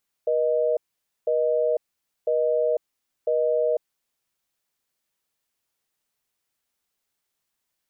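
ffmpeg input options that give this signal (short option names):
-f lavfi -i "aevalsrc='0.0794*(sin(2*PI*480*t)+sin(2*PI*620*t))*clip(min(mod(t,1),0.5-mod(t,1))/0.005,0,1)':d=3.52:s=44100"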